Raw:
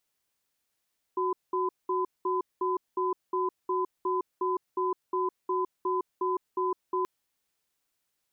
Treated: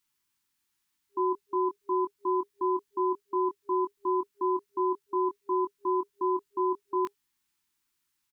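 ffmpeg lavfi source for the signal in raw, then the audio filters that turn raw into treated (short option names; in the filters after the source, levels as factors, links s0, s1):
-f lavfi -i "aevalsrc='0.0398*(sin(2*PI*369*t)+sin(2*PI*1010*t))*clip(min(mod(t,0.36),0.16-mod(t,0.36))/0.005,0,1)':d=5.88:s=44100"
-filter_complex "[0:a]afftfilt=real='re*(1-between(b*sr/4096,400,820))':imag='im*(1-between(b*sr/4096,400,820))':win_size=4096:overlap=0.75,adynamicequalizer=threshold=0.00631:dfrequency=1100:dqfactor=1.7:tfrequency=1100:tqfactor=1.7:attack=5:release=100:ratio=0.375:range=2.5:mode=cutabove:tftype=bell,asplit=2[s0][s1];[s1]adelay=22,volume=0.501[s2];[s0][s2]amix=inputs=2:normalize=0"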